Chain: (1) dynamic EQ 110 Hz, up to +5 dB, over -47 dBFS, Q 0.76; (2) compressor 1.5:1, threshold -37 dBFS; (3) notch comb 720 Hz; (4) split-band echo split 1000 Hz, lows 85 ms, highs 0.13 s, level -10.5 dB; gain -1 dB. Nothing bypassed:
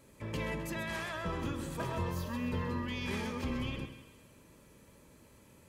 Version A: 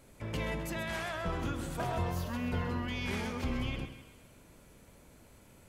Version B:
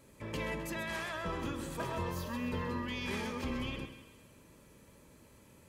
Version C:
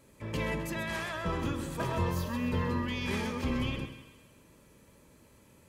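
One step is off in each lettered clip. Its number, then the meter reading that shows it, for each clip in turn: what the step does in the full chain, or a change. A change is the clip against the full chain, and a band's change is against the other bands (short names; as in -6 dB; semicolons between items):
3, loudness change +1.0 LU; 1, momentary loudness spread change +2 LU; 2, mean gain reduction 2.5 dB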